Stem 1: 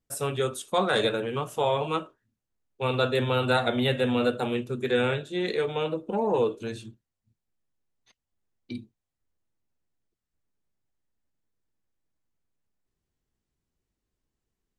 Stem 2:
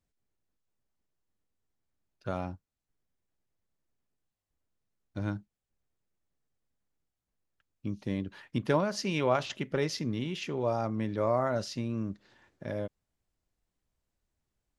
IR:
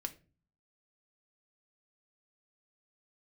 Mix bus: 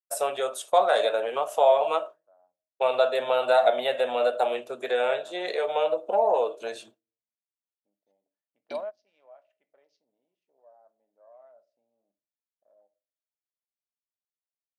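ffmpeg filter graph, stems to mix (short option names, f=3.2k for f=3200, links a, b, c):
-filter_complex "[0:a]agate=range=-33dB:threshold=-41dB:ratio=3:detection=peak,acompressor=threshold=-31dB:ratio=2,volume=1.5dB,asplit=3[a][b][c];[b]volume=-16.5dB[d];[1:a]afwtdn=0.01,volume=-16dB,asplit=2[e][f];[f]volume=-21dB[g];[c]apad=whole_len=652134[h];[e][h]sidechaingate=range=-33dB:threshold=-46dB:ratio=16:detection=peak[i];[2:a]atrim=start_sample=2205[j];[d][g]amix=inputs=2:normalize=0[k];[k][j]afir=irnorm=-1:irlink=0[l];[a][i][l]amix=inputs=3:normalize=0,highpass=f=640:t=q:w=6.5"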